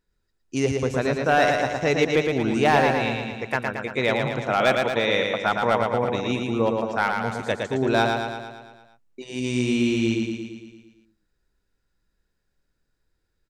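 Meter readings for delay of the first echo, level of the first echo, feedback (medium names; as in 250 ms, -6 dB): 113 ms, -4.0 dB, 59%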